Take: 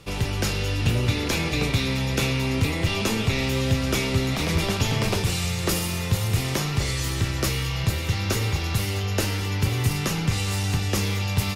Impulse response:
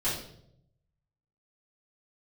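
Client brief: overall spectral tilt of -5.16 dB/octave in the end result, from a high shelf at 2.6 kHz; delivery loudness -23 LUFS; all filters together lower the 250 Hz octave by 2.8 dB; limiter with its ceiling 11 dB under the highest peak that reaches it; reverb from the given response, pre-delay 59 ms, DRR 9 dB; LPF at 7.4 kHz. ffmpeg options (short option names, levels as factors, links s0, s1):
-filter_complex "[0:a]lowpass=7400,equalizer=f=250:t=o:g=-4,highshelf=f=2600:g=-3,alimiter=limit=0.0794:level=0:latency=1,asplit=2[s0][s1];[1:a]atrim=start_sample=2205,adelay=59[s2];[s1][s2]afir=irnorm=-1:irlink=0,volume=0.141[s3];[s0][s3]amix=inputs=2:normalize=0,volume=2"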